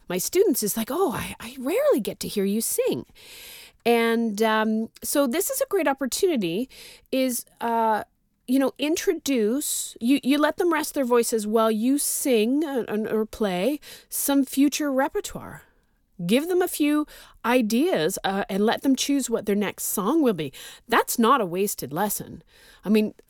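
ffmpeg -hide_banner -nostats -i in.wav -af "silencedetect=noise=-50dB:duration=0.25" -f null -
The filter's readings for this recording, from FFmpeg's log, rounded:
silence_start: 8.04
silence_end: 8.48 | silence_duration: 0.44
silence_start: 15.70
silence_end: 16.19 | silence_duration: 0.49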